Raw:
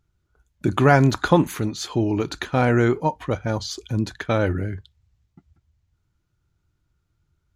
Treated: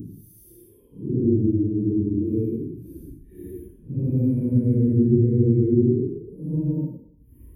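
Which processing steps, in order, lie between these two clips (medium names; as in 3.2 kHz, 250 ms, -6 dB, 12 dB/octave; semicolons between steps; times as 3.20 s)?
Paulstretch 5×, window 0.10 s, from 1.73 s; inverse Chebyshev band-stop 680–7500 Hz, stop band 40 dB; trim +1.5 dB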